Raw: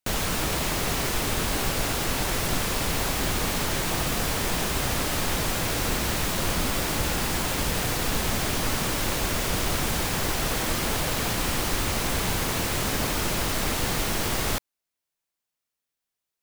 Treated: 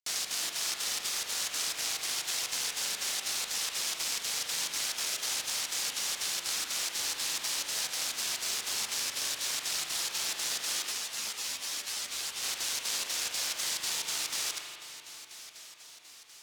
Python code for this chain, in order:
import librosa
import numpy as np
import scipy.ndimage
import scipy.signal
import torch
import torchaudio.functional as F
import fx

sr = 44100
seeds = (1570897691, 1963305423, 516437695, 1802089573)

p1 = fx.self_delay(x, sr, depth_ms=0.74)
p2 = p1 + fx.echo_diffused(p1, sr, ms=1044, feedback_pct=54, wet_db=-15.0, dry=0)
p3 = fx.volume_shaper(p2, sr, bpm=122, per_beat=2, depth_db=-14, release_ms=60.0, shape='slow start')
p4 = fx.bandpass_q(p3, sr, hz=5500.0, q=1.2)
p5 = fx.rev_spring(p4, sr, rt60_s=2.0, pass_ms=(41,), chirp_ms=55, drr_db=2.0)
p6 = fx.ensemble(p5, sr, at=(10.91, 12.42), fade=0.02)
y = p6 * 10.0 ** (3.5 / 20.0)